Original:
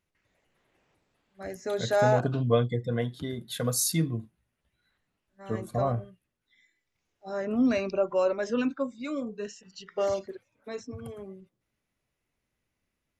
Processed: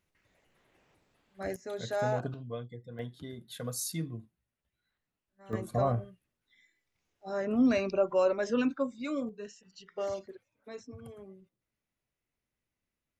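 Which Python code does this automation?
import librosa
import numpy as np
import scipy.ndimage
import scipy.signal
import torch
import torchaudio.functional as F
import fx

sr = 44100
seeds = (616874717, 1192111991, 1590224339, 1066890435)

y = fx.gain(x, sr, db=fx.steps((0.0, 2.0), (1.56, -8.0), (2.34, -16.0), (2.99, -9.0), (5.53, -1.0), (9.29, -7.0)))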